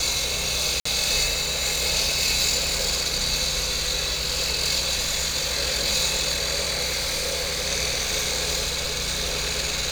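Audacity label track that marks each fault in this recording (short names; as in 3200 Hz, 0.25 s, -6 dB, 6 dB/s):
0.800000	0.850000	gap 54 ms
6.830000	7.680000	clipped -22 dBFS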